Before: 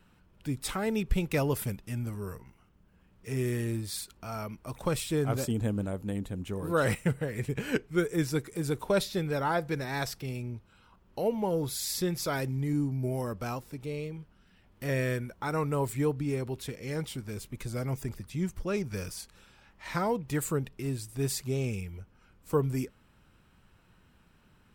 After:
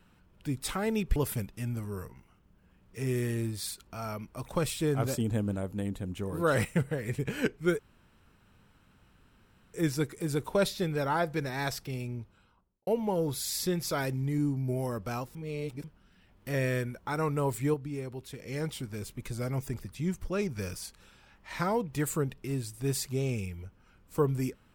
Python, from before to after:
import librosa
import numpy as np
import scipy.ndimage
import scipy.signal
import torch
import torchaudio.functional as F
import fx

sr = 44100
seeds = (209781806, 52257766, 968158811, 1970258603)

y = fx.studio_fade_out(x, sr, start_s=10.55, length_s=0.67)
y = fx.edit(y, sr, fx.cut(start_s=1.16, length_s=0.3),
    fx.insert_room_tone(at_s=8.09, length_s=1.95),
    fx.reverse_span(start_s=13.7, length_s=0.49),
    fx.clip_gain(start_s=16.09, length_s=0.66, db=-5.5), tone=tone)